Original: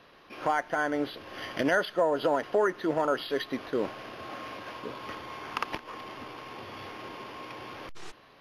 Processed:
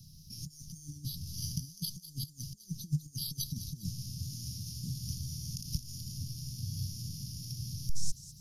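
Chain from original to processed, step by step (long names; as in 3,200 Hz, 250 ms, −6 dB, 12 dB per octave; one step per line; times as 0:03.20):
compressor whose output falls as the input rises −33 dBFS, ratio −0.5
Chebyshev band-stop filter 160–5,500 Hz, order 4
delay with a high-pass on its return 202 ms, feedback 52%, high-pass 4,300 Hz, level −11 dB
level +12.5 dB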